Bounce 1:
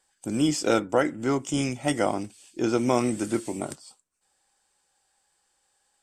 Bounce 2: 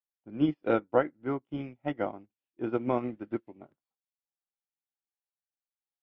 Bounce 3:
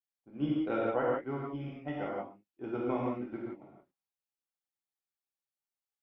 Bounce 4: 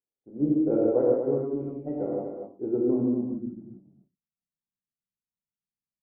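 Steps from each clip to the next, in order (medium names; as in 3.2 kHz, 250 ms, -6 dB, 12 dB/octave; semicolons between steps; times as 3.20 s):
Bessel low-pass 1.9 kHz, order 6; upward expansion 2.5:1, over -41 dBFS
gated-style reverb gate 200 ms flat, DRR -5 dB; trim -9 dB
low-pass sweep 450 Hz -> 190 Hz, 2.69–3.42 s; on a send: delay 238 ms -7 dB; on the sum: trim +3.5 dB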